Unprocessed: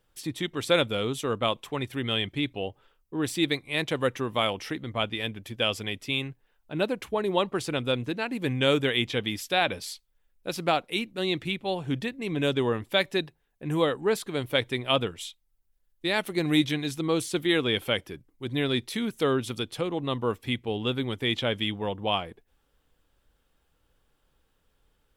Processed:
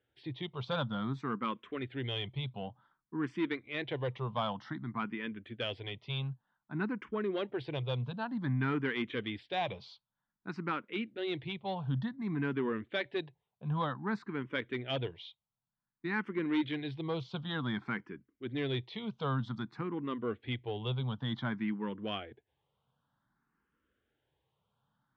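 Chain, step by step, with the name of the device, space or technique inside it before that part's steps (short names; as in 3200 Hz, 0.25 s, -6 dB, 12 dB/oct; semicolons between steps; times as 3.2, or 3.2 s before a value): barber-pole phaser into a guitar amplifier (endless phaser +0.54 Hz; soft clip -20.5 dBFS, distortion -16 dB; speaker cabinet 100–3500 Hz, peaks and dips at 130 Hz +8 dB, 210 Hz +6 dB, 530 Hz -4 dB, 990 Hz +5 dB, 1500 Hz +3 dB, 2600 Hz -5 dB); gain -4.5 dB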